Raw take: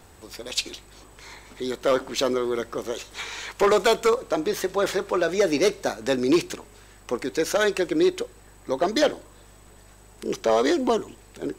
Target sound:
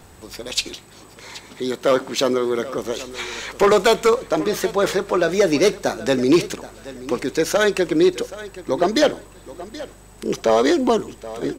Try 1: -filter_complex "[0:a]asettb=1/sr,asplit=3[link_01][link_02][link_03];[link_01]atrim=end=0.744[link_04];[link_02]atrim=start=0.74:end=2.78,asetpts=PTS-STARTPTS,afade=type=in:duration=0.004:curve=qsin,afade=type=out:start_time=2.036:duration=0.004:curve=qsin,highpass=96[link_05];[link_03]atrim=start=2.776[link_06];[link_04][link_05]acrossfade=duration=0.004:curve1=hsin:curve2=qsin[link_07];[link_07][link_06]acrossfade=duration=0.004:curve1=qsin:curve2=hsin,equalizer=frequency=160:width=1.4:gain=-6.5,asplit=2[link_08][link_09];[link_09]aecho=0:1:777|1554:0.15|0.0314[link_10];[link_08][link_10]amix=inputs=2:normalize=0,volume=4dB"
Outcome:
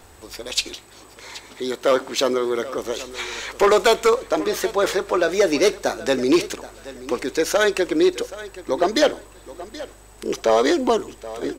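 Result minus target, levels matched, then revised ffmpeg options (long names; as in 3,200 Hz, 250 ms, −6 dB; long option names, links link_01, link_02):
125 Hz band −7.5 dB
-filter_complex "[0:a]asettb=1/sr,asplit=3[link_01][link_02][link_03];[link_01]atrim=end=0.744[link_04];[link_02]atrim=start=0.74:end=2.78,asetpts=PTS-STARTPTS,afade=type=in:duration=0.004:curve=qsin,afade=type=out:start_time=2.036:duration=0.004:curve=qsin,highpass=96[link_05];[link_03]atrim=start=2.776[link_06];[link_04][link_05]acrossfade=duration=0.004:curve1=hsin:curve2=qsin[link_07];[link_07][link_06]acrossfade=duration=0.004:curve1=qsin:curve2=hsin,equalizer=frequency=160:width=1.4:gain=4.5,asplit=2[link_08][link_09];[link_09]aecho=0:1:777|1554:0.15|0.0314[link_10];[link_08][link_10]amix=inputs=2:normalize=0,volume=4dB"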